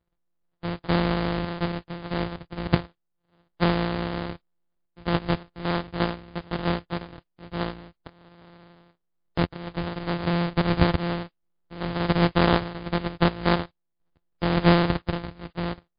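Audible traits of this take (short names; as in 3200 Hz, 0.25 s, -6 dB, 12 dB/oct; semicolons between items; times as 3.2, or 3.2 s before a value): a buzz of ramps at a fixed pitch in blocks of 256 samples; random-step tremolo; aliases and images of a low sample rate 2500 Hz, jitter 20%; MP3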